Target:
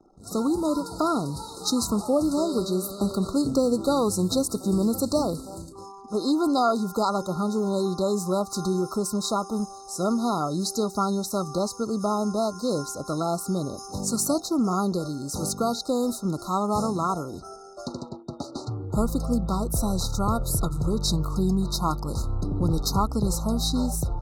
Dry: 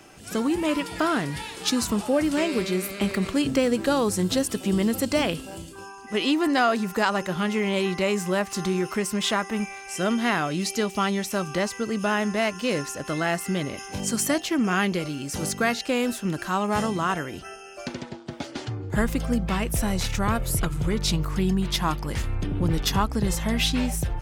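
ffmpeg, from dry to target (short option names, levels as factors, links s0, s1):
-af "anlmdn=0.0398,afftfilt=real='re*(1-between(b*sr/4096,1400,3700))':imag='im*(1-between(b*sr/4096,1400,3700))':win_size=4096:overlap=0.75"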